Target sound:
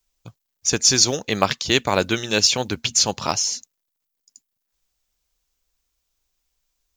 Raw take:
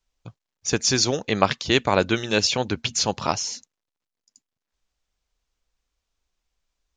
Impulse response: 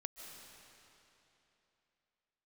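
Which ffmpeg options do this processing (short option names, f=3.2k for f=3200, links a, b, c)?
-af "aemphasis=mode=production:type=50fm,acrusher=bits=8:mode=log:mix=0:aa=0.000001"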